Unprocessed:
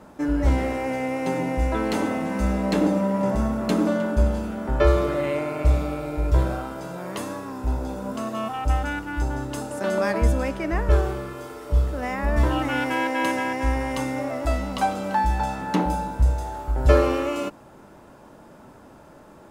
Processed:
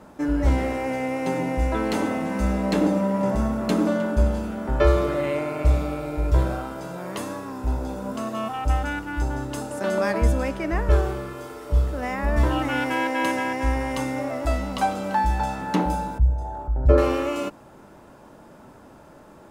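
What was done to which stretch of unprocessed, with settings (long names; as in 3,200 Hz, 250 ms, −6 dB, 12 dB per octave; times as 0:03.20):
0:16.18–0:16.98: spectral envelope exaggerated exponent 1.5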